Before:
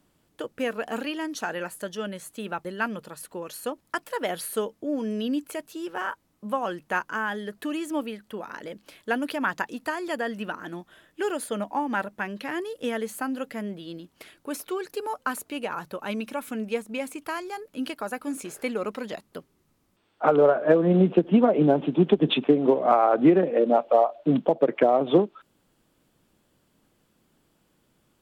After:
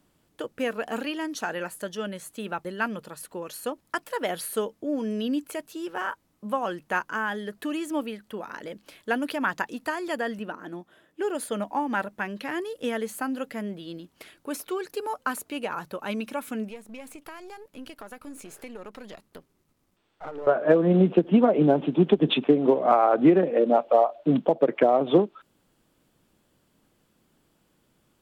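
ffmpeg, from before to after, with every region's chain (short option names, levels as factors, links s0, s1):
-filter_complex "[0:a]asettb=1/sr,asplit=3[s0][s1][s2];[s0]atrim=end=10.394[s3];[s1]atrim=start=10.39:end=11.35,asetpts=PTS-STARTPTS,afade=t=in:d=0.004:c=qsin,afade=t=out:st=0.956:d=0.004:c=qsin,highpass=f=440:p=1,tiltshelf=f=690:g=7[s4];[s2]atrim=start=11.346[s5];[s3][s4]acrossfade=d=0.004:c1=hsin:c2=qsin[s6];[s6][s5]acrossfade=d=0.004:c1=qsin:c2=hsin,asettb=1/sr,asplit=3[s7][s8][s9];[s7]atrim=end=16.704[s10];[s8]atrim=start=16.7:end=20.47,asetpts=PTS-STARTPTS,afade=t=in:d=0.004:c=qsin,afade=t=out:st=3.766:d=0.004:c=qsin,aeval=exprs='if(lt(val(0),0),0.447*val(0),val(0))':c=same,acompressor=threshold=0.01:ratio=2.5:attack=3.2:release=140:knee=1:detection=peak[s11];[s9]atrim=start=20.466[s12];[s10][s11]acrossfade=d=0.004:c1=hsin:c2=qsin[s13];[s13][s12]acrossfade=d=0.004:c1=qsin:c2=hsin"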